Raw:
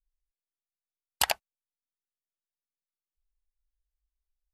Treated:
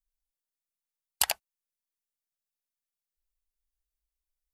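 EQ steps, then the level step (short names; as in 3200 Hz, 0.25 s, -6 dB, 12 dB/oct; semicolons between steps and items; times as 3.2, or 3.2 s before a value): high shelf 4900 Hz +9.5 dB; -5.0 dB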